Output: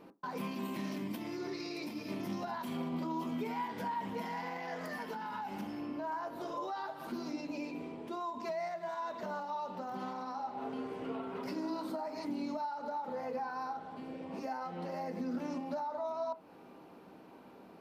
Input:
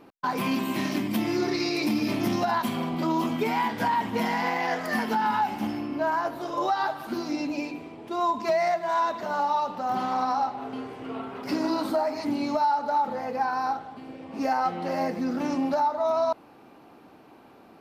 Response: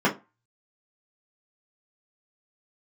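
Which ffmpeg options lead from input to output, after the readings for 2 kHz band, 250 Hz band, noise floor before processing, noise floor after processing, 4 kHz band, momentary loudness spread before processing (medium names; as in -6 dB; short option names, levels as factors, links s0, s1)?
-14.0 dB, -11.0 dB, -52 dBFS, -55 dBFS, -14.0 dB, 8 LU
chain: -filter_complex "[0:a]alimiter=level_in=1.58:limit=0.0631:level=0:latency=1:release=216,volume=0.631,asplit=2[s0][s1];[1:a]atrim=start_sample=2205,lowpass=1500[s2];[s1][s2]afir=irnorm=-1:irlink=0,volume=0.0794[s3];[s0][s3]amix=inputs=2:normalize=0,volume=0.562"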